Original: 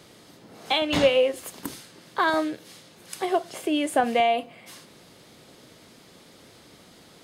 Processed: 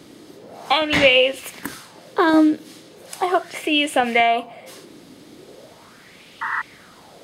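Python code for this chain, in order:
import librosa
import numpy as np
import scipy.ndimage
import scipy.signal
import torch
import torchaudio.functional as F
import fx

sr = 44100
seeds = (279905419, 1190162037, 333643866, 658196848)

y = fx.spec_paint(x, sr, seeds[0], shape='noise', start_s=6.41, length_s=0.21, low_hz=880.0, high_hz=2000.0, level_db=-29.0)
y = fx.bell_lfo(y, sr, hz=0.39, low_hz=270.0, high_hz=2800.0, db=13)
y = y * librosa.db_to_amplitude(2.5)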